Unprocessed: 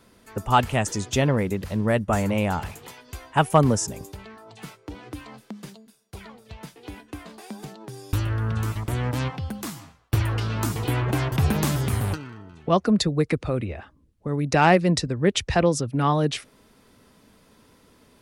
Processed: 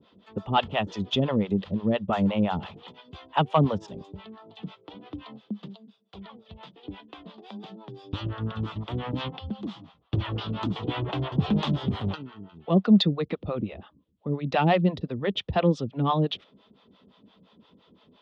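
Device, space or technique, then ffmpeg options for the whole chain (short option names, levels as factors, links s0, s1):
guitar amplifier with harmonic tremolo: -filter_complex "[0:a]acrossover=split=520[s0][s1];[s0]aeval=exprs='val(0)*(1-1/2+1/2*cos(2*PI*5.8*n/s))':c=same[s2];[s1]aeval=exprs='val(0)*(1-1/2-1/2*cos(2*PI*5.8*n/s))':c=same[s3];[s2][s3]amix=inputs=2:normalize=0,asoftclip=type=tanh:threshold=0.266,highpass=100,equalizer=f=120:t=q:w=4:g=-5,equalizer=f=190:t=q:w=4:g=6,equalizer=f=1600:t=q:w=4:g=-8,equalizer=f=2200:t=q:w=4:g=-7,equalizer=f=3400:t=q:w=4:g=9,lowpass=f=3600:w=0.5412,lowpass=f=3600:w=1.3066,volume=1.33"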